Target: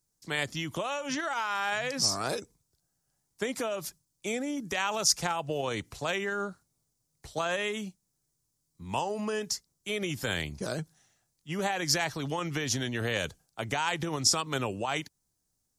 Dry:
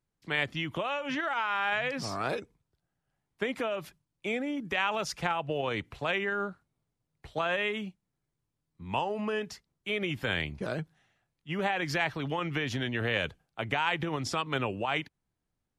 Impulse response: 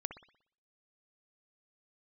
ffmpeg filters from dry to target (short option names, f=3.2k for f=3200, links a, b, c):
-af "highshelf=f=4.1k:t=q:w=1.5:g=13.5"